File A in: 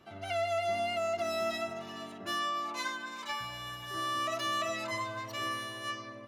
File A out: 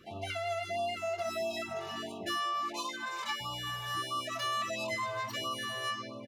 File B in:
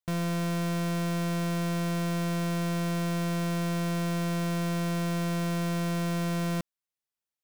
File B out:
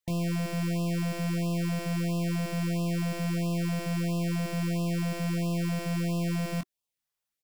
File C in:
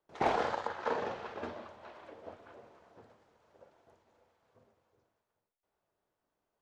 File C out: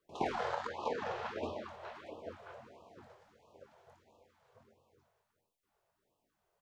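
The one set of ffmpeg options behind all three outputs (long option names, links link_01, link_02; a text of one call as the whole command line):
ffmpeg -i in.wav -filter_complex "[0:a]acompressor=threshold=-36dB:ratio=4,asplit=2[link_01][link_02];[link_02]adelay=23,volume=-8dB[link_03];[link_01][link_03]amix=inputs=2:normalize=0,afftfilt=real='re*(1-between(b*sr/1024,230*pow(1800/230,0.5+0.5*sin(2*PI*1.5*pts/sr))/1.41,230*pow(1800/230,0.5+0.5*sin(2*PI*1.5*pts/sr))*1.41))':imag='im*(1-between(b*sr/1024,230*pow(1800/230,0.5+0.5*sin(2*PI*1.5*pts/sr))/1.41,230*pow(1800/230,0.5+0.5*sin(2*PI*1.5*pts/sr))*1.41))':win_size=1024:overlap=0.75,volume=3.5dB" out.wav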